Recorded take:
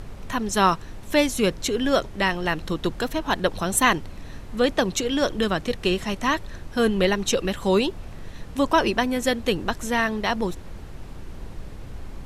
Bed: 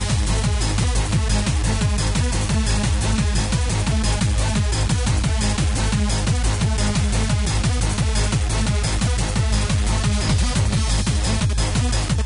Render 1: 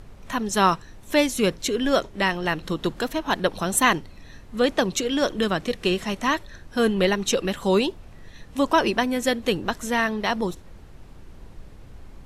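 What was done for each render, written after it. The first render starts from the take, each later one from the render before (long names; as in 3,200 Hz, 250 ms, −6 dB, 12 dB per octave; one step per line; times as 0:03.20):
noise reduction from a noise print 7 dB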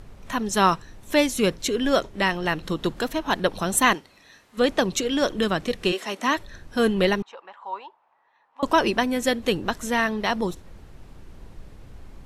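0:03.93–0:04.57: high-pass filter 530 Hz → 1,200 Hz 6 dB per octave
0:05.91–0:06.36: high-pass filter 380 Hz → 170 Hz 24 dB per octave
0:07.22–0:08.63: four-pole ladder band-pass 990 Hz, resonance 70%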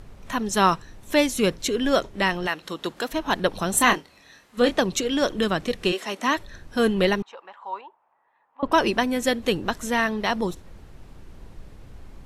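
0:02.46–0:03.11: high-pass filter 820 Hz → 350 Hz 6 dB per octave
0:03.71–0:04.78: double-tracking delay 25 ms −7.5 dB
0:07.81–0:08.72: high-frequency loss of the air 420 metres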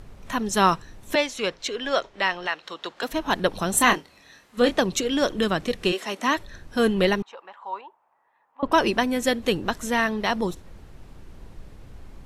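0:01.15–0:03.03: three-way crossover with the lows and the highs turned down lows −14 dB, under 470 Hz, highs −19 dB, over 6,600 Hz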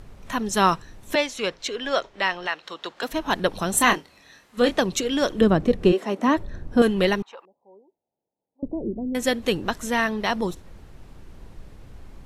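0:05.41–0:06.82: tilt shelving filter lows +9 dB, about 1,100 Hz
0:07.45–0:09.15: Gaussian smoothing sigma 20 samples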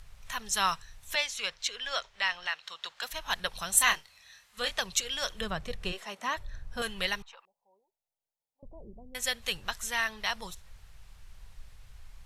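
guitar amp tone stack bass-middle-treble 10-0-10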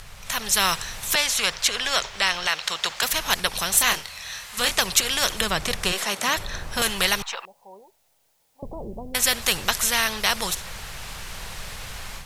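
automatic gain control gain up to 10 dB
every bin compressed towards the loudest bin 2 to 1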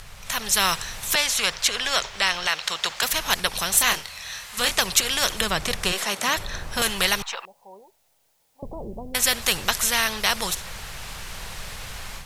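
no processing that can be heard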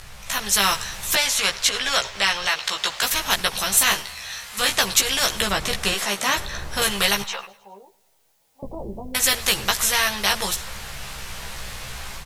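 double-tracking delay 15 ms −3 dB
repeating echo 104 ms, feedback 55%, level −23 dB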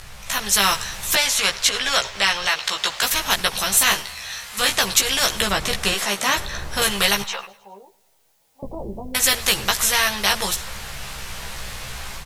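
level +1.5 dB
brickwall limiter −2 dBFS, peak gain reduction 1.5 dB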